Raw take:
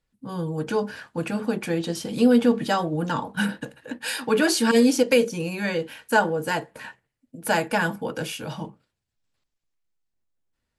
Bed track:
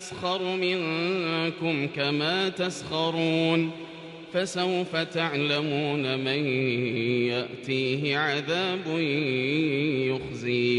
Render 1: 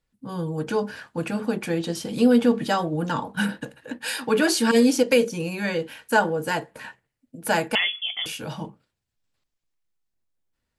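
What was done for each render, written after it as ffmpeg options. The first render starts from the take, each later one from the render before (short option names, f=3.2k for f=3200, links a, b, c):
-filter_complex "[0:a]asettb=1/sr,asplit=3[a][b][c];[a]atrim=end=7.754[d];[b]atrim=start=7.75:end=8.26,asetpts=PTS-STARTPTS,afade=t=in:d=0.004:c=qsin,afade=t=out:st=0.506:d=0.004:c=qsin,lowpass=f=3.1k:t=q:w=0.5098,lowpass=f=3.1k:t=q:w=0.6013,lowpass=f=3.1k:t=q:w=0.9,lowpass=f=3.1k:t=q:w=2.563,afreqshift=-3600[e];[c]atrim=start=8.256[f];[d][e]acrossfade=d=0.004:c1=hsin:c2=qsin[g];[g][f]acrossfade=d=0.004:c1=qsin:c2=hsin"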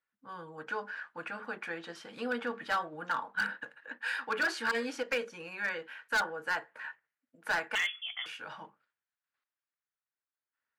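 -af "bandpass=f=1.5k:t=q:w=2.1:csg=0,asoftclip=type=hard:threshold=-25dB"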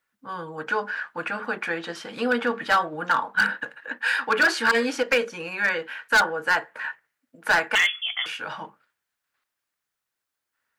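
-af "volume=11dB"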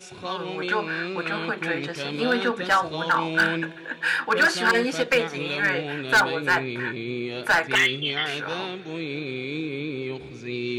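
-filter_complex "[1:a]volume=-5dB[a];[0:a][a]amix=inputs=2:normalize=0"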